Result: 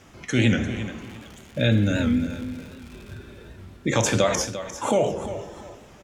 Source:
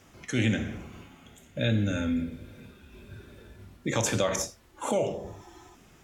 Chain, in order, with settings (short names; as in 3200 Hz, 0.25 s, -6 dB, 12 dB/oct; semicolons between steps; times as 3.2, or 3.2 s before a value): 1.01–3.16 crackle 220/s -40 dBFS; high shelf 11000 Hz -10 dB; feedback echo 0.347 s, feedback 27%, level -12 dB; record warp 78 rpm, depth 100 cents; gain +6 dB